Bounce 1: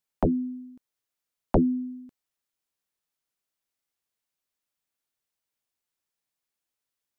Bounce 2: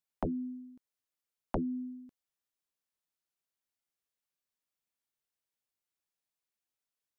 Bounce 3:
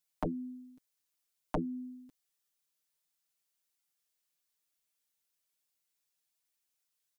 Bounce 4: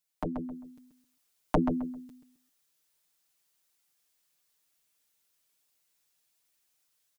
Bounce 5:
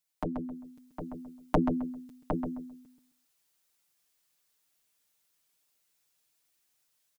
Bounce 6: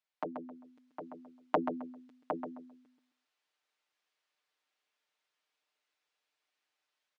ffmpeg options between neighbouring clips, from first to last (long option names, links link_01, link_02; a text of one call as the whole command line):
ffmpeg -i in.wav -af "acompressor=threshold=-26dB:ratio=3,volume=-6dB" out.wav
ffmpeg -i in.wav -af "highshelf=frequency=2500:gain=9.5,aecho=1:1:6.6:0.78,volume=-2.5dB" out.wav
ffmpeg -i in.wav -filter_complex "[0:a]asplit=2[link_01][link_02];[link_02]adelay=132,lowpass=frequency=2600:poles=1,volume=-7.5dB,asplit=2[link_03][link_04];[link_04]adelay=132,lowpass=frequency=2600:poles=1,volume=0.24,asplit=2[link_05][link_06];[link_06]adelay=132,lowpass=frequency=2600:poles=1,volume=0.24[link_07];[link_01][link_03][link_05][link_07]amix=inputs=4:normalize=0,dynaudnorm=framelen=240:gausssize=5:maxgain=8dB" out.wav
ffmpeg -i in.wav -filter_complex "[0:a]asplit=2[link_01][link_02];[link_02]adelay=758,volume=-6dB,highshelf=frequency=4000:gain=-17.1[link_03];[link_01][link_03]amix=inputs=2:normalize=0" out.wav
ffmpeg -i in.wav -af "highpass=430,lowpass=3200" out.wav